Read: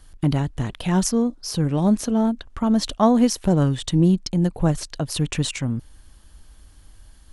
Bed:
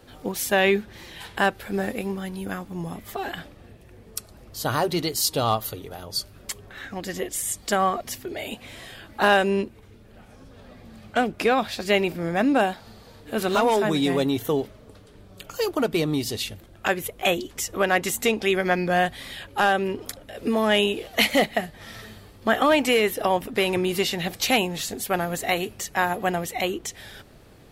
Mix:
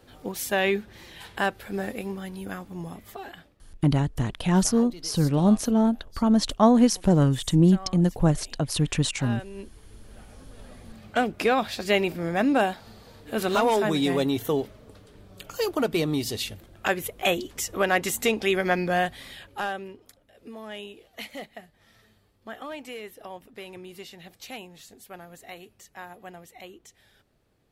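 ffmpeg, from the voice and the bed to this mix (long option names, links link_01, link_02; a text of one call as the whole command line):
ffmpeg -i stem1.wav -i stem2.wav -filter_complex "[0:a]adelay=3600,volume=-1dB[link_01];[1:a]volume=13.5dB,afade=type=out:start_time=2.82:duration=0.77:silence=0.177828,afade=type=in:start_time=9.54:duration=0.5:silence=0.133352,afade=type=out:start_time=18.78:duration=1.23:silence=0.141254[link_02];[link_01][link_02]amix=inputs=2:normalize=0" out.wav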